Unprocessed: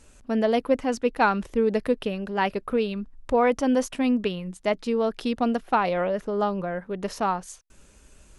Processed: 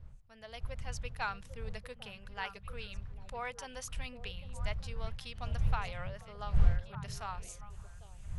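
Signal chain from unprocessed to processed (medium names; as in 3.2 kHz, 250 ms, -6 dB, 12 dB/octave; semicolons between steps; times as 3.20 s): fade-in on the opening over 0.94 s; wind noise 110 Hz -22 dBFS; amplifier tone stack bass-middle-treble 10-0-10; repeats whose band climbs or falls 400 ms, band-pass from 160 Hz, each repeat 1.4 oct, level -5 dB; trim -6.5 dB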